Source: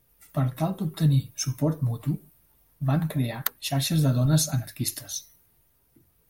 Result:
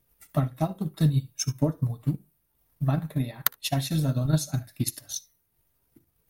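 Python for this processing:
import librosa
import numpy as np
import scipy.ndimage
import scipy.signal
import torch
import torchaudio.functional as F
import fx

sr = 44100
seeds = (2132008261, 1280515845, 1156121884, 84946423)

y = fx.echo_multitap(x, sr, ms=(59, 74), db=(-17.0, -18.5))
y = fx.transient(y, sr, attack_db=8, sustain_db=-6)
y = y * librosa.db_to_amplitude(-5.0)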